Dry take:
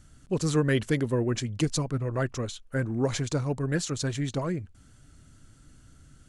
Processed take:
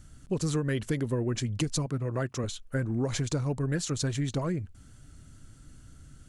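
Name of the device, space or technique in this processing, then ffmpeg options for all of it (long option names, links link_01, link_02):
ASMR close-microphone chain: -filter_complex "[0:a]lowshelf=frequency=210:gain=4,acompressor=threshold=-25dB:ratio=6,highshelf=frequency=9800:gain=4.5,asettb=1/sr,asplit=3[link_01][link_02][link_03];[link_01]atrim=end=1.864[link_04];[link_02]atrim=start=1.86:end=2.44,asetpts=PTS-STARTPTS,afade=type=in:duration=0.004:curve=qsin,afade=type=out:start_time=0.576:duration=0.004:curve=qsin,highpass=110[link_05];[link_03]atrim=start=2.436[link_06];[link_04][link_05]acrossfade=duration=0.004:curve1=hsin:curve2=qsin[link_07];[link_07][link_06]acrossfade=duration=0.004:curve1=qsin:curve2=hsin"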